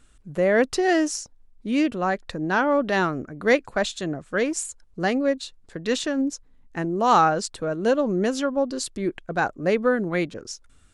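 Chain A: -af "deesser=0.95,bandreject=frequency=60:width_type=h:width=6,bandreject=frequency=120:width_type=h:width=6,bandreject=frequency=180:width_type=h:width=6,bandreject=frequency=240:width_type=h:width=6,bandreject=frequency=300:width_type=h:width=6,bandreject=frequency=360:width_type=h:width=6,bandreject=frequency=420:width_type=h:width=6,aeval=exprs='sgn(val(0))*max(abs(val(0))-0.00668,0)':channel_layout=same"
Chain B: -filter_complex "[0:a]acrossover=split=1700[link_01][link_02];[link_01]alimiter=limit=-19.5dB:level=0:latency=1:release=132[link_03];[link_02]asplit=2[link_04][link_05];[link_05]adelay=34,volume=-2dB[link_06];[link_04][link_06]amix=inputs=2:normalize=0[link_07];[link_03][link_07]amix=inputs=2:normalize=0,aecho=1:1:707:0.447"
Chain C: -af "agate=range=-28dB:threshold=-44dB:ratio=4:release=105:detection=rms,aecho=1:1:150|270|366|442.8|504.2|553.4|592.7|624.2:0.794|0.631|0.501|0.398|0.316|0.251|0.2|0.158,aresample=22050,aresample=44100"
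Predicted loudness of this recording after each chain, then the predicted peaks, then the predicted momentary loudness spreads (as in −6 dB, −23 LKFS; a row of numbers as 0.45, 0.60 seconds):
−25.5, −27.0, −20.0 LKFS; −10.0, −11.0, −3.5 dBFS; 10, 6, 7 LU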